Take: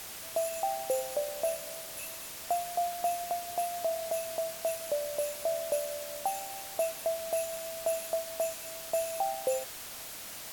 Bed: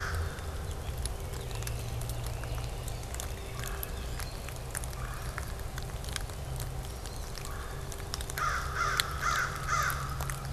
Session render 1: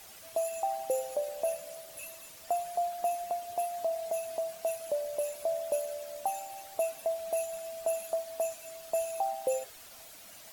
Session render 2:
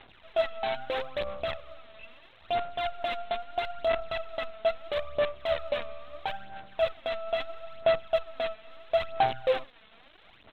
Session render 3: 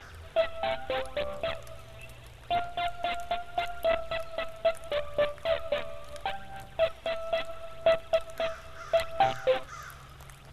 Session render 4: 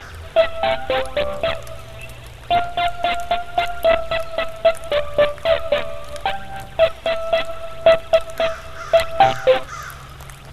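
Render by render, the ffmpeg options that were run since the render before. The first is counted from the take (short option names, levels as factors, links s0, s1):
-af "afftdn=nr=10:nf=-44"
-af "aresample=8000,acrusher=bits=6:dc=4:mix=0:aa=0.000001,aresample=44100,aphaser=in_gain=1:out_gain=1:delay=4.6:decay=0.57:speed=0.76:type=sinusoidal"
-filter_complex "[1:a]volume=0.2[s0];[0:a][s0]amix=inputs=2:normalize=0"
-af "volume=3.76"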